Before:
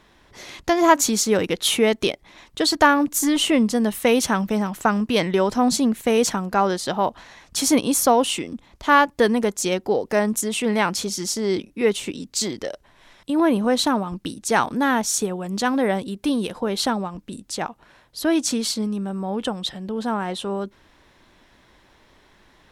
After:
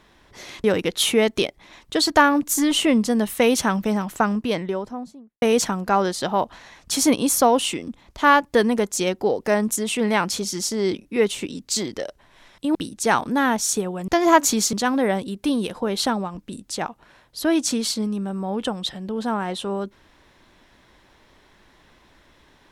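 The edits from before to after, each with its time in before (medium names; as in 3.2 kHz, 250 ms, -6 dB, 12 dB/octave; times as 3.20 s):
0.64–1.29 s: move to 15.53 s
4.66–6.07 s: studio fade out
13.40–14.20 s: delete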